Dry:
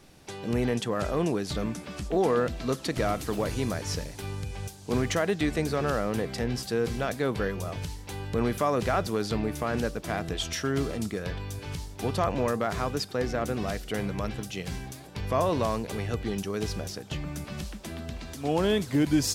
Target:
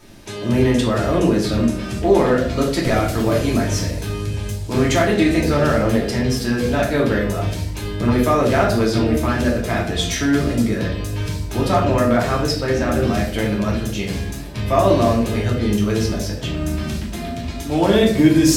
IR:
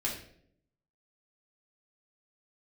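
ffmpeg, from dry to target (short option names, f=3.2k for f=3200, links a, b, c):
-filter_complex "[0:a]asetrate=45938,aresample=44100[a];[1:a]atrim=start_sample=2205[b];[a][b]afir=irnorm=-1:irlink=0,volume=5.5dB"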